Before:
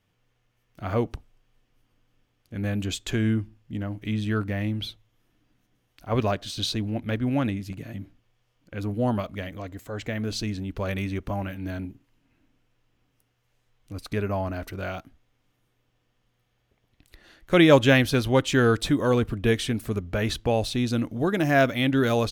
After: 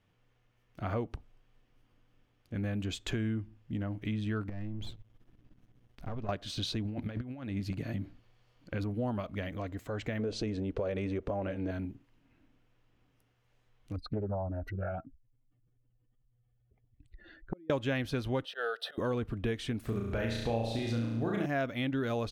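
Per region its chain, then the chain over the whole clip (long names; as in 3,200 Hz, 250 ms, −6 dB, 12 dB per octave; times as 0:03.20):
0:04.49–0:06.29: gain on one half-wave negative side −12 dB + low-shelf EQ 370 Hz +11.5 dB + downward compressor 16 to 1, threshold −31 dBFS
0:06.85–0:08.84: parametric band 4,400 Hz +7.5 dB 0.2 octaves + compressor whose output falls as the input rises −31 dBFS, ratio −0.5
0:10.19–0:11.71: Butterworth low-pass 10,000 Hz + parametric band 490 Hz +14.5 dB 0.96 octaves + downward compressor 2 to 1, threshold −24 dBFS
0:13.96–0:17.70: expanding power law on the bin magnitudes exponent 2.2 + gate with flip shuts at −17 dBFS, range −36 dB + highs frequency-modulated by the lows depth 0.45 ms
0:18.45–0:18.98: volume swells 103 ms + high-pass filter 460 Hz 24 dB per octave + phaser with its sweep stopped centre 1,500 Hz, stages 8
0:19.85–0:21.46: de-essing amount 55% + flutter between parallel walls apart 6 metres, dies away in 0.8 s
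whole clip: high-shelf EQ 5,300 Hz −10.5 dB; downward compressor 3 to 1, threshold −33 dBFS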